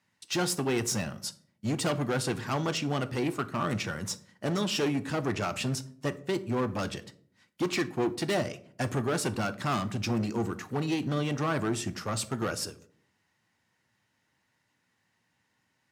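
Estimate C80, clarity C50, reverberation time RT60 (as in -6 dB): 21.5 dB, 18.0 dB, 0.60 s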